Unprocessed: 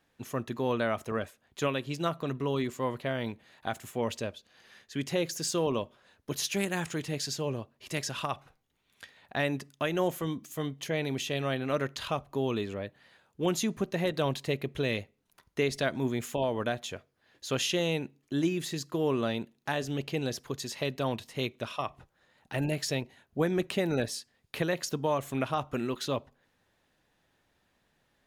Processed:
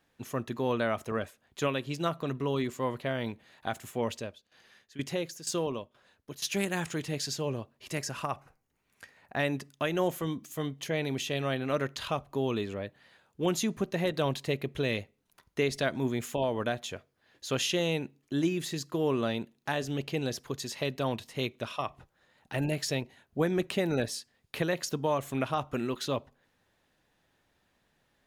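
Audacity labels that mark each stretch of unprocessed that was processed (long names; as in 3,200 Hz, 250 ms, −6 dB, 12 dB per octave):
4.040000	6.520000	shaped tremolo saw down 2.1 Hz, depth 80%
7.940000	9.390000	parametric band 3,500 Hz −11.5 dB 0.51 octaves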